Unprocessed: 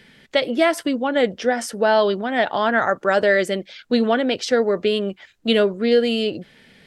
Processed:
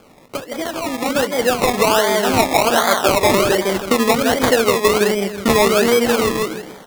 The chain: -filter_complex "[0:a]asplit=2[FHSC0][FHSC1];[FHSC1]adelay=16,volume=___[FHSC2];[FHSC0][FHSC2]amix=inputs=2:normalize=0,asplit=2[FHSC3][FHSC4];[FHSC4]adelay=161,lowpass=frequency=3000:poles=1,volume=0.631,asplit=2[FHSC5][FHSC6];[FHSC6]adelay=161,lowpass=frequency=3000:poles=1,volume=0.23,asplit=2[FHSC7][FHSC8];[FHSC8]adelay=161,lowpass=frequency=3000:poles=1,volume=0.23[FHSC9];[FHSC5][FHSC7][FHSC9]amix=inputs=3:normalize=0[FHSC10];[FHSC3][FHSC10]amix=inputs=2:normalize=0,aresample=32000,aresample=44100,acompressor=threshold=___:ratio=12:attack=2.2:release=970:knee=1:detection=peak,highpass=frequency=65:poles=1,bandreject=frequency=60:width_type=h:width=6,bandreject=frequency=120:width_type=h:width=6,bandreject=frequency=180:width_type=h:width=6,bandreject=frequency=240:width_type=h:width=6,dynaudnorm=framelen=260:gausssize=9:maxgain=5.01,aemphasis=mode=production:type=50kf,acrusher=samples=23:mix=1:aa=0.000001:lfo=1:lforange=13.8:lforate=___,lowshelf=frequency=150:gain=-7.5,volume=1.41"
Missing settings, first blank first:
0.237, 0.0708, 1.3